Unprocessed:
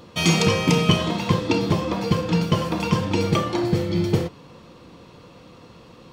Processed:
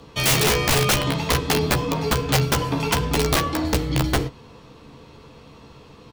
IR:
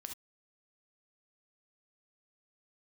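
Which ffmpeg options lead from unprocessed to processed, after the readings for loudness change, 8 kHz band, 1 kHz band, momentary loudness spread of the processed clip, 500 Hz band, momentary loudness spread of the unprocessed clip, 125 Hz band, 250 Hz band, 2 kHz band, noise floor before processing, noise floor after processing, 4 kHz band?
+0.5 dB, +7.5 dB, +2.0 dB, 5 LU, 0.0 dB, 5 LU, −1.0 dB, −4.0 dB, +4.0 dB, −48 dBFS, −47 dBFS, +2.5 dB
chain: -filter_complex "[0:a]aeval=exprs='(mod(4.47*val(0)+1,2)-1)/4.47':channel_layout=same,afreqshift=-37,asplit=2[link_01][link_02];[link_02]adelay=14,volume=-7.5dB[link_03];[link_01][link_03]amix=inputs=2:normalize=0"

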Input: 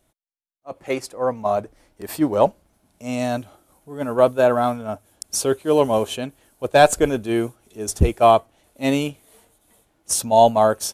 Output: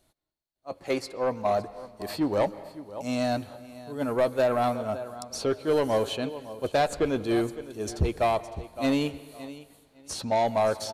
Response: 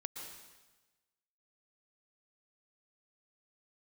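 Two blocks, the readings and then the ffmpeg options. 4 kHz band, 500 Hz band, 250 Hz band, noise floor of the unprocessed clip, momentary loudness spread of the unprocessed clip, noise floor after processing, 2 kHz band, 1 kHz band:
−5.5 dB, −7.5 dB, −5.0 dB, −67 dBFS, 17 LU, −69 dBFS, −7.0 dB, −9.0 dB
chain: -filter_complex "[0:a]equalizer=frequency=4300:width=5.4:gain=11.5,asplit=2[link_01][link_02];[link_02]adelay=558,lowpass=frequency=4400:poles=1,volume=-19dB,asplit=2[link_03][link_04];[link_04]adelay=558,lowpass=frequency=4400:poles=1,volume=0.2[link_05];[link_01][link_03][link_05]amix=inputs=3:normalize=0,acrossover=split=3200|6500[link_06][link_07][link_08];[link_06]acompressor=threshold=-15dB:ratio=4[link_09];[link_07]acompressor=threshold=-40dB:ratio=4[link_10];[link_08]acompressor=threshold=-47dB:ratio=4[link_11];[link_09][link_10][link_11]amix=inputs=3:normalize=0,asoftclip=type=tanh:threshold=-14.5dB,asplit=2[link_12][link_13];[1:a]atrim=start_sample=2205,lowpass=4900,adelay=11[link_14];[link_13][link_14]afir=irnorm=-1:irlink=0,volume=-11dB[link_15];[link_12][link_15]amix=inputs=2:normalize=0,volume=-2.5dB"

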